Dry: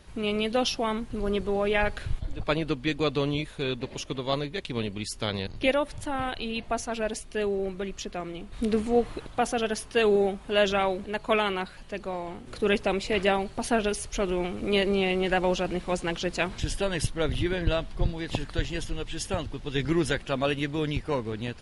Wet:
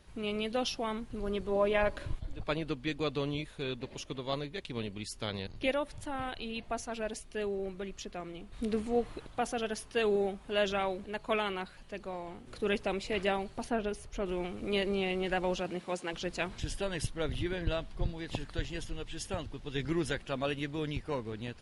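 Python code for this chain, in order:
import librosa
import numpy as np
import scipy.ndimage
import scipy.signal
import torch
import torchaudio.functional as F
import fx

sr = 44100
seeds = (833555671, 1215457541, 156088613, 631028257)

y = fx.small_body(x, sr, hz=(310.0, 570.0, 1000.0), ring_ms=45, db=fx.line((1.5, 11.0), (2.14, 14.0)), at=(1.5, 2.14), fade=0.02)
y = fx.high_shelf(y, sr, hz=2500.0, db=-10.0, at=(13.64, 14.26))
y = fx.highpass(y, sr, hz=fx.line((15.6, 94.0), (16.12, 280.0)), slope=12, at=(15.6, 16.12), fade=0.02)
y = F.gain(torch.from_numpy(y), -7.0).numpy()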